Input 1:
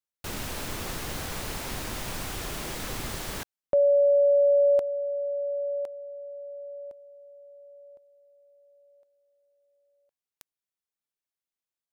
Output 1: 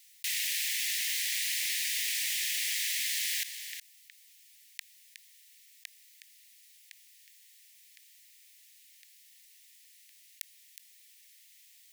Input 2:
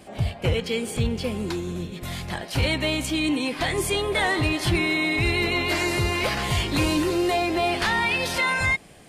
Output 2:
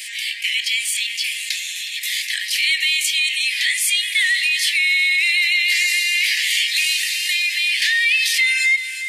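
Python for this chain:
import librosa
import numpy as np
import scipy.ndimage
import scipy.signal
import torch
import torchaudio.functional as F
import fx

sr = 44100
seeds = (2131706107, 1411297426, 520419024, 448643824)

y = scipy.signal.sosfilt(scipy.signal.butter(16, 1800.0, 'highpass', fs=sr, output='sos'), x)
y = y + 10.0 ** (-20.0 / 20.0) * np.pad(y, (int(366 * sr / 1000.0), 0))[:len(y)]
y = fx.env_flatten(y, sr, amount_pct=50)
y = F.gain(torch.from_numpy(y), 6.5).numpy()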